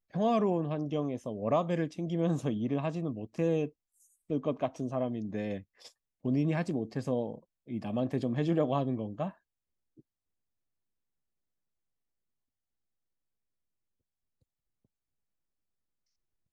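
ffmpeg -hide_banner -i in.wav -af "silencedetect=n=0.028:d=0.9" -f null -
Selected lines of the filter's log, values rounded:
silence_start: 9.28
silence_end: 16.52 | silence_duration: 7.24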